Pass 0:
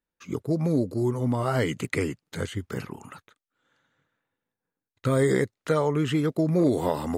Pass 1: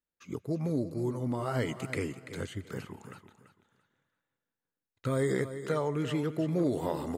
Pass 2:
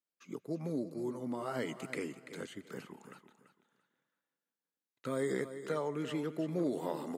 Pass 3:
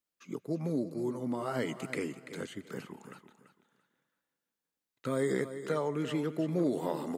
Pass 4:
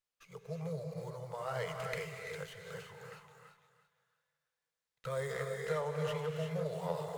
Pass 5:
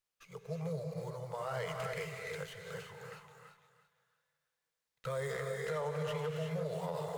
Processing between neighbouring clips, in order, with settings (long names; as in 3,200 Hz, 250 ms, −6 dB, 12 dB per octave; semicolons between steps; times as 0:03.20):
repeating echo 337 ms, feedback 23%, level −12 dB; on a send at −20.5 dB: convolution reverb RT60 0.70 s, pre-delay 110 ms; on the sum: level −7 dB
high-pass filter 170 Hz 24 dB per octave; level −4.5 dB
low-shelf EQ 120 Hz +6 dB; level +3 dB
elliptic band-stop filter 160–460 Hz, stop band 40 dB; reverb whose tail is shaped and stops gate 390 ms rising, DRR 2.5 dB; windowed peak hold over 3 samples; level −2.5 dB
brickwall limiter −30 dBFS, peak gain reduction 7.5 dB; level +1.5 dB